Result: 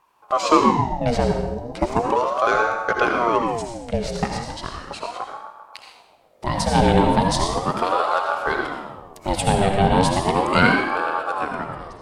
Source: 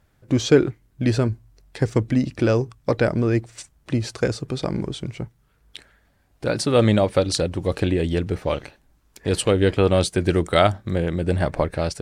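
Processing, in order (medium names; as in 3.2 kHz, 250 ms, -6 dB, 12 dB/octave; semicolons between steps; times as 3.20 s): fade out at the end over 1.19 s; 4.24–4.91 s: high-pass 570 Hz 24 dB/octave; filtered feedback delay 131 ms, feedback 67%, low-pass 1 kHz, level -9 dB; reverberation RT60 0.80 s, pre-delay 40 ms, DRR 2 dB; ring modulator with a swept carrier 650 Hz, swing 55%, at 0.36 Hz; trim +1.5 dB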